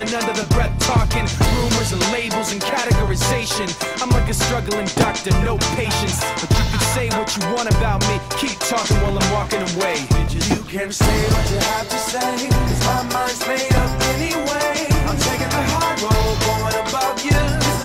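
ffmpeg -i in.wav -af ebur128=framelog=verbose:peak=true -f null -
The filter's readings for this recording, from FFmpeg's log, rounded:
Integrated loudness:
  I:         -18.7 LUFS
  Threshold: -28.7 LUFS
Loudness range:
  LRA:         0.8 LU
  Threshold: -38.7 LUFS
  LRA low:   -19.0 LUFS
  LRA high:  -18.3 LUFS
True peak:
  Peak:       -6.5 dBFS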